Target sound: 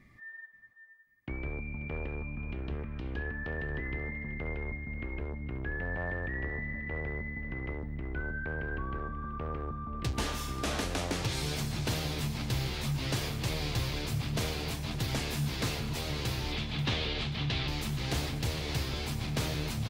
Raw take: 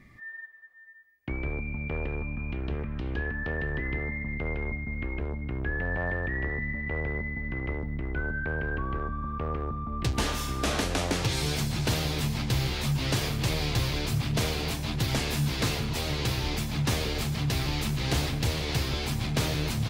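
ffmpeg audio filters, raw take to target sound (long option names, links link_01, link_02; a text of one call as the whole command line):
ffmpeg -i in.wav -filter_complex "[0:a]asoftclip=type=hard:threshold=-17.5dB,asettb=1/sr,asplit=3[link_01][link_02][link_03];[link_01]atrim=end=16.524[link_04];[link_02]atrim=start=16.52:end=17.68,asetpts=PTS-STARTPTS,afade=type=in:duration=0.004:curve=qsin,afade=type=out:start_time=1.156:duration=0.004:curve=qsin,lowpass=frequency=3500:width_type=q:width=2.3[link_05];[link_03]atrim=start=17.676[link_06];[link_04][link_05]acrossfade=duration=0.004:curve1=hsin:curve2=qsin[link_07];[link_07][link_06]acrossfade=duration=0.004:curve1=qsin:curve2=hsin,aecho=1:1:535|1070|1605:0.158|0.0602|0.0229,volume=-5dB" out.wav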